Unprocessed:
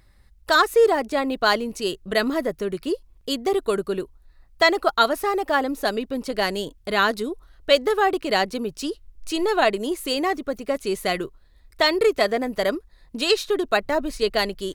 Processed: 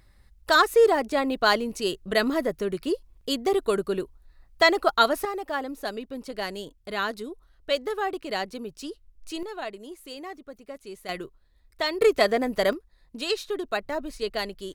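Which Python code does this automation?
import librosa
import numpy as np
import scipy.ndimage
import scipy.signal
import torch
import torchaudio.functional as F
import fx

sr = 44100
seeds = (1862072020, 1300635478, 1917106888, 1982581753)

y = fx.gain(x, sr, db=fx.steps((0.0, -1.5), (5.25, -8.5), (9.43, -15.5), (11.09, -8.0), (12.02, -0.5), (12.73, -7.5)))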